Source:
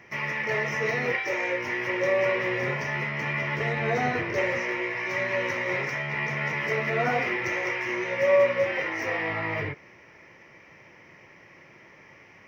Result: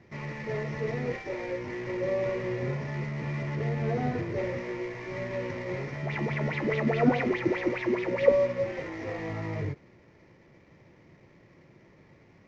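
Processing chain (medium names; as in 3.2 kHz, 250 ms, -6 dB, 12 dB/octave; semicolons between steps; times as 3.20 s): CVSD coder 32 kbps; tilt shelf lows +9.5 dB, about 640 Hz; 6.03–8.32 s: sweeping bell 4.8 Hz 230–3600 Hz +16 dB; trim -5.5 dB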